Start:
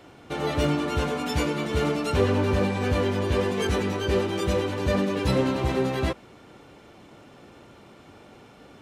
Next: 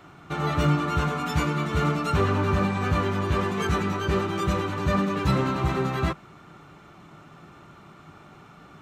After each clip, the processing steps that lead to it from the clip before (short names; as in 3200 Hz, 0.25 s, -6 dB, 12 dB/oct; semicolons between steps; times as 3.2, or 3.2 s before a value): thirty-one-band EQ 160 Hz +10 dB, 250 Hz -5 dB, 500 Hz -10 dB, 1250 Hz +10 dB, 3150 Hz -3 dB, 5000 Hz -5 dB, 10000 Hz -8 dB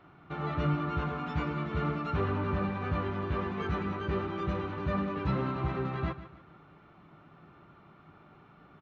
Gaussian blur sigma 2.3 samples; feedback echo 0.146 s, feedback 36%, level -14 dB; gain -7.5 dB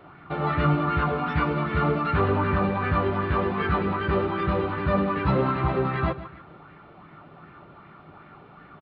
downsampling 11025 Hz; LFO bell 2.6 Hz 470–2000 Hz +8 dB; gain +6.5 dB